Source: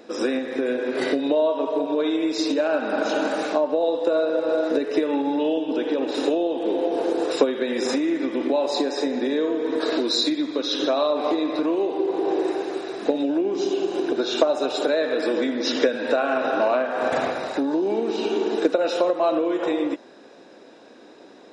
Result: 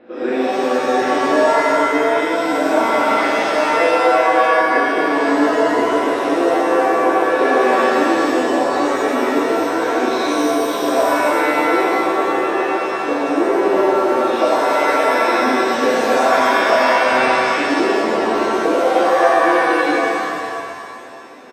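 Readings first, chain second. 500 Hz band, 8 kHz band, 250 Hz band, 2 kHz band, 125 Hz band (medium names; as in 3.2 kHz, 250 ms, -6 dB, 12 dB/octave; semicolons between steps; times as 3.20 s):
+6.0 dB, +8.0 dB, +4.0 dB, +14.0 dB, no reading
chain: low-pass 2.9 kHz 24 dB/octave; frequency-shifting echo 138 ms, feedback 64%, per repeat -44 Hz, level -21 dB; pitch-shifted reverb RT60 1.9 s, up +7 st, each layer -2 dB, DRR -6.5 dB; trim -3 dB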